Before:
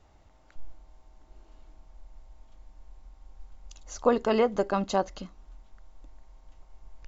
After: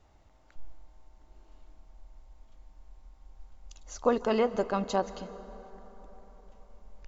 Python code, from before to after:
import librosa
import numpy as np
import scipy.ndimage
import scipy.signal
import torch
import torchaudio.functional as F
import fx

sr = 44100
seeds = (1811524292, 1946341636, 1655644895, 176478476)

y = fx.rev_plate(x, sr, seeds[0], rt60_s=4.5, hf_ratio=0.45, predelay_ms=120, drr_db=14.5)
y = F.gain(torch.from_numpy(y), -2.5).numpy()